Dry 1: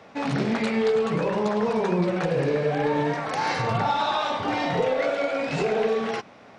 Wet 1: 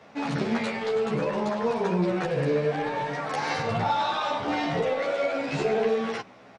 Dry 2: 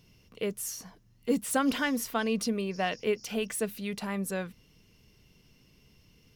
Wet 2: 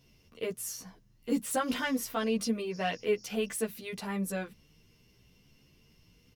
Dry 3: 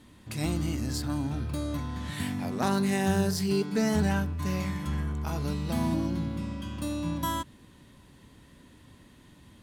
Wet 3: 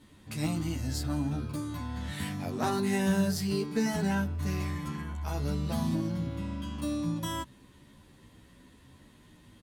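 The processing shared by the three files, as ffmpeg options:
ffmpeg -i in.wav -filter_complex "[0:a]acontrast=71,asplit=2[link_01][link_02];[link_02]adelay=11.6,afreqshift=0.9[link_03];[link_01][link_03]amix=inputs=2:normalize=1,volume=-5.5dB" out.wav

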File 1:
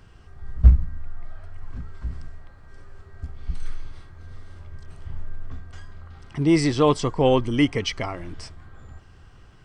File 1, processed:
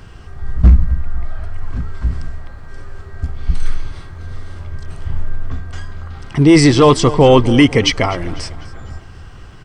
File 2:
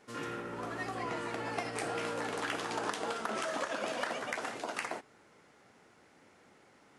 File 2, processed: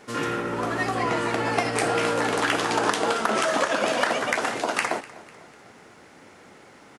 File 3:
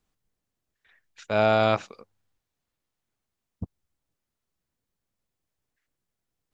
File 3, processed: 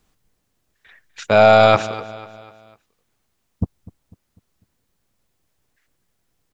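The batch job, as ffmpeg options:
ffmpeg -i in.wav -af "aecho=1:1:249|498|747|996:0.106|0.0487|0.0224|0.0103,apsyclip=14.5dB,volume=-2dB" out.wav

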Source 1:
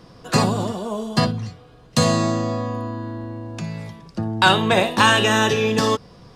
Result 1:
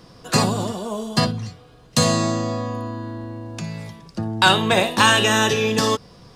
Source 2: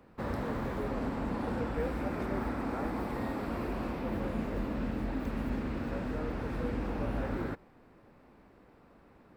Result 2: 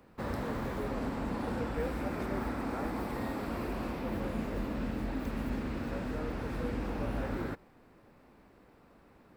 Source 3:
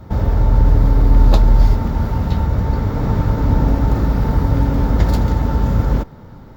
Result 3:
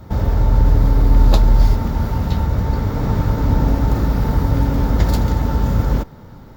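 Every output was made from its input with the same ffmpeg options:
ffmpeg -i in.wav -af "highshelf=frequency=3800:gain=6,volume=-1dB" out.wav

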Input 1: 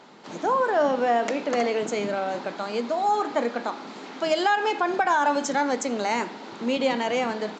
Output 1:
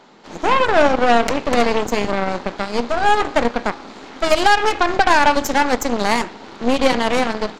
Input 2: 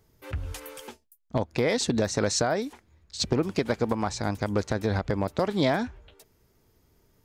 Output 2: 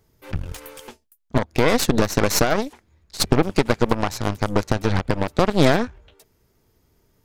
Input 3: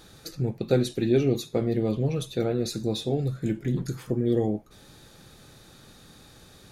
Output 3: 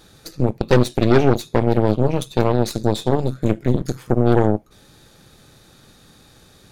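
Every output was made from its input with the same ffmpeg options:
ffmpeg -i in.wav -af "aeval=exprs='0.376*(cos(1*acos(clip(val(0)/0.376,-1,1)))-cos(1*PI/2))+0.0531*(cos(5*acos(clip(val(0)/0.376,-1,1)))-cos(5*PI/2))+0.0596*(cos(7*acos(clip(val(0)/0.376,-1,1)))-cos(7*PI/2))+0.0596*(cos(8*acos(clip(val(0)/0.376,-1,1)))-cos(8*PI/2))':channel_layout=same,volume=6dB" out.wav

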